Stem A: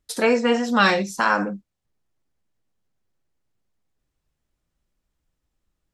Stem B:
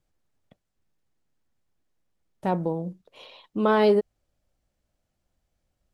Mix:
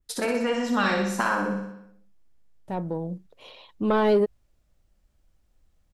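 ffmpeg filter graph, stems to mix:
-filter_complex "[0:a]acompressor=threshold=-24dB:ratio=3,volume=-3dB,asplit=3[a][b][c];[b]volume=-5.5dB[d];[1:a]asoftclip=type=tanh:threshold=-12.5dB,adelay=250,volume=-3.5dB[e];[c]apad=whole_len=277134[f];[e][f]sidechaincompress=threshold=-52dB:ratio=3:attack=16:release=1010[g];[d]aecho=0:1:61|122|183|244|305|366|427|488|549:1|0.59|0.348|0.205|0.121|0.0715|0.0422|0.0249|0.0147[h];[a][g][h]amix=inputs=3:normalize=0,adynamicequalizer=threshold=0.00447:dfrequency=5300:dqfactor=1:tfrequency=5300:tqfactor=1:attack=5:release=100:ratio=0.375:range=2:mode=cutabove:tftype=bell,dynaudnorm=f=300:g=3:m=3.5dB,lowshelf=f=77:g=10"

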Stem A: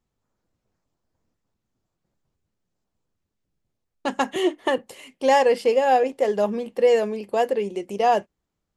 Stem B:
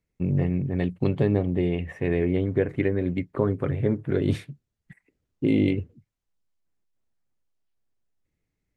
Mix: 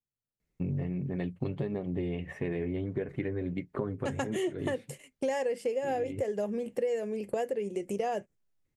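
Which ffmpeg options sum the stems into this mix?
-filter_complex "[0:a]agate=range=-24dB:threshold=-41dB:ratio=16:detection=peak,equalizer=f=125:t=o:w=1:g=9,equalizer=f=500:t=o:w=1:g=4,equalizer=f=1k:t=o:w=1:g=-8,equalizer=f=2k:t=o:w=1:g=4,equalizer=f=4k:t=o:w=1:g=-8,equalizer=f=8k:t=o:w=1:g=7,volume=0dB,asplit=2[a][b];[1:a]flanger=delay=4.7:depth=3:regen=-46:speed=1.5:shape=sinusoidal,adelay=400,volume=2.5dB[c];[b]apad=whole_len=404158[d];[c][d]sidechaincompress=threshold=-24dB:ratio=8:attack=32:release=236[e];[a][e]amix=inputs=2:normalize=0,acompressor=threshold=-30dB:ratio=5"

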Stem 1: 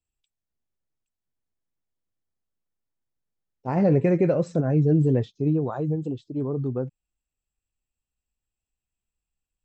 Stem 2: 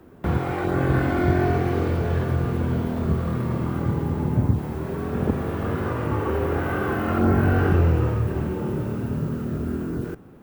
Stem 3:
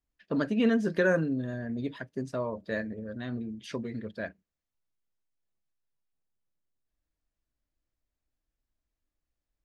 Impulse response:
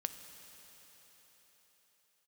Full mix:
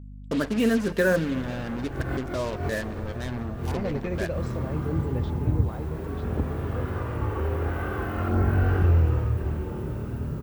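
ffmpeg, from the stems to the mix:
-filter_complex "[0:a]equalizer=f=3.8k:w=0.59:g=8.5,volume=-10dB[a];[1:a]adelay=1100,volume=-5.5dB[b];[2:a]highpass=50,acrusher=bits=5:mix=0:aa=0.5,volume=-1dB,asplit=3[c][d][e];[d]volume=-4dB[f];[e]apad=whole_len=508250[g];[b][g]sidechaincompress=threshold=-45dB:ratio=8:attack=26:release=143[h];[3:a]atrim=start_sample=2205[i];[f][i]afir=irnorm=-1:irlink=0[j];[a][h][c][j]amix=inputs=4:normalize=0,asubboost=boost=4.5:cutoff=76,aeval=exprs='val(0)+0.01*(sin(2*PI*50*n/s)+sin(2*PI*2*50*n/s)/2+sin(2*PI*3*50*n/s)/3+sin(2*PI*4*50*n/s)/4+sin(2*PI*5*50*n/s)/5)':c=same"

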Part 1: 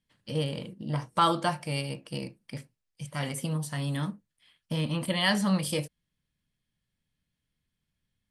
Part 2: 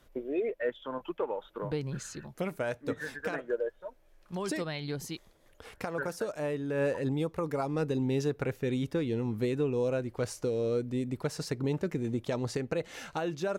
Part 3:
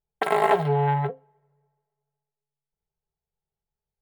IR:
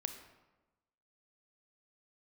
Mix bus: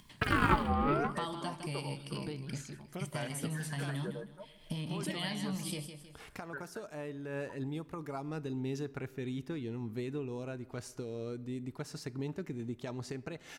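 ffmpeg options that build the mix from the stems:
-filter_complex "[0:a]equalizer=f=1.4k:t=o:w=0.62:g=-7.5,acompressor=threshold=-35dB:ratio=10,volume=0dB,asplit=2[a][b];[b]volume=-9dB[c];[1:a]adelay=550,volume=-9.5dB,asplit=2[d][e];[e]volume=-7.5dB[f];[2:a]aeval=exprs='val(0)*sin(2*PI*690*n/s+690*0.5/0.68*sin(2*PI*0.68*n/s))':c=same,volume=-7dB,asplit=2[g][h];[h]volume=-6.5dB[i];[3:a]atrim=start_sample=2205[j];[f][i]amix=inputs=2:normalize=0[k];[k][j]afir=irnorm=-1:irlink=0[l];[c]aecho=0:1:158|316|474|632:1|0.27|0.0729|0.0197[m];[a][d][g][l][m]amix=inputs=5:normalize=0,equalizer=f=510:w=5.3:g=-10,acompressor=mode=upward:threshold=-43dB:ratio=2.5"

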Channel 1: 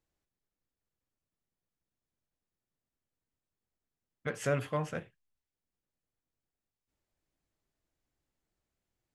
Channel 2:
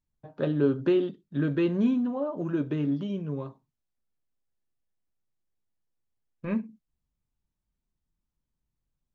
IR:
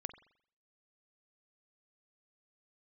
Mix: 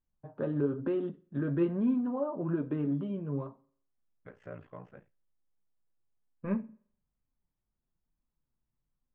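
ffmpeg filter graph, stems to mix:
-filter_complex "[0:a]aeval=exprs='val(0)*sin(2*PI*29*n/s)':c=same,volume=-11.5dB,asplit=2[a][b];[b]volume=-23.5dB[c];[1:a]equalizer=f=1.1k:t=o:w=0.77:g=2,alimiter=limit=-20dB:level=0:latency=1:release=135,flanger=delay=3.7:depth=5.3:regen=56:speed=1.1:shape=sinusoidal,volume=-0.5dB,asplit=2[d][e];[e]volume=-6dB[f];[2:a]atrim=start_sample=2205[g];[c][f]amix=inputs=2:normalize=0[h];[h][g]afir=irnorm=-1:irlink=0[i];[a][d][i]amix=inputs=3:normalize=0,lowpass=1.6k"

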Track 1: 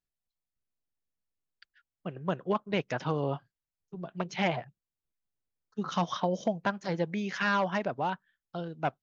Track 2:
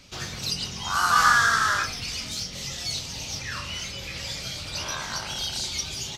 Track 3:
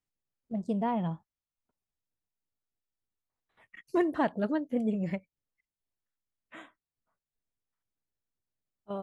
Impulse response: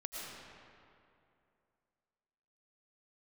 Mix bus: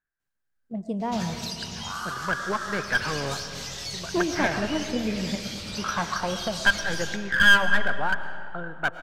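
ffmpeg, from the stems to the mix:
-filter_complex "[0:a]lowpass=f=1.6k:t=q:w=12,aemphasis=mode=production:type=50kf,aeval=exprs='clip(val(0),-1,0.0944)':c=same,volume=-3.5dB,asplit=2[a][b];[b]volume=-6.5dB[c];[1:a]acompressor=threshold=-29dB:ratio=12,adelay=1000,volume=-5dB,asplit=2[d][e];[e]volume=-3dB[f];[2:a]adelay=200,volume=-1.5dB,asplit=2[g][h];[h]volume=-4.5dB[i];[3:a]atrim=start_sample=2205[j];[c][f][i]amix=inputs=3:normalize=0[k];[k][j]afir=irnorm=-1:irlink=0[l];[a][d][g][l]amix=inputs=4:normalize=0"

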